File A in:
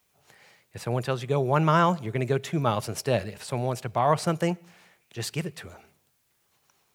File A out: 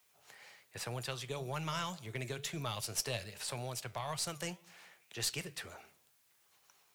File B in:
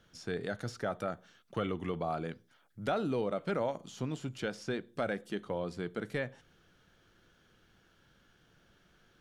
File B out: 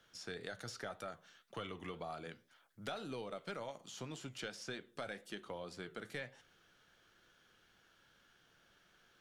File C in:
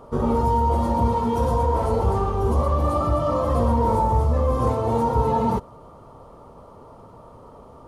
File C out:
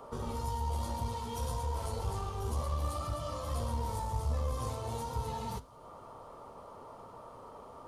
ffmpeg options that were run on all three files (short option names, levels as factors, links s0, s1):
-filter_complex "[0:a]lowshelf=f=410:g=-11.5,acrossover=split=130|3000[s0][s1][s2];[s1]acompressor=threshold=0.00631:ratio=3[s3];[s0][s3][s2]amix=inputs=3:normalize=0,flanger=delay=7:depth=4.4:regen=-80:speed=1.9:shape=triangular,aeval=exprs='0.0562*(cos(1*acos(clip(val(0)/0.0562,-1,1)))-cos(1*PI/2))+0.00355*(cos(4*acos(clip(val(0)/0.0562,-1,1)))-cos(4*PI/2))':c=same,volume=1.68"